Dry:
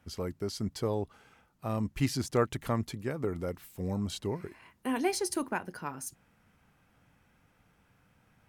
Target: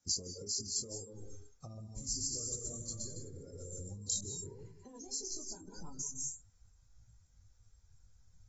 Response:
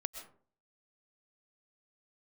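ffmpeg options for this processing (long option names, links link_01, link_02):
-filter_complex "[0:a]asoftclip=type=tanh:threshold=-24dB[link_01];[1:a]atrim=start_sample=2205,asetrate=32634,aresample=44100[link_02];[link_01][link_02]afir=irnorm=-1:irlink=0,flanger=delay=18:depth=4.5:speed=1.7,equalizer=frequency=9000:width_type=o:width=0.59:gain=12,acrossover=split=600|7200[link_03][link_04][link_05];[link_03]acompressor=threshold=-41dB:ratio=4[link_06];[link_04]acompressor=threshold=-54dB:ratio=4[link_07];[link_05]acompressor=threshold=-46dB:ratio=4[link_08];[link_06][link_07][link_08]amix=inputs=3:normalize=0,asettb=1/sr,asplit=3[link_09][link_10][link_11];[link_09]atrim=end=1.654[link_12];[link_10]atrim=start=1.65:end=3.94,asetpts=PTS-STARTPTS,afade=type=in:duration=0.004:curve=qsin,afade=type=out:start_time=2.286:duration=0.004:curve=qsin,aecho=1:1:120|210|277.5|328.1|366.1:0.631|0.398|0.251|0.158|0.1,atrim=end_sample=100989[link_13];[link_11]atrim=start=3.936[link_14];[link_12][link_13]acrossfade=duration=0.004:curve1=hsin:curve2=qsin[link_15];[link_15][link_14]acrossfade=duration=0.004:curve1=qsin:curve2=hsin,alimiter=level_in=11.5dB:limit=-24dB:level=0:latency=1:release=430,volume=-11.5dB,acompressor=threshold=-48dB:ratio=4,asubboost=boost=6.5:cutoff=81,aexciter=amount=12.9:drive=5.3:freq=4200,afftdn=noise_reduction=18:noise_floor=-49,volume=2dB" -ar 44100 -c:a aac -b:a 24k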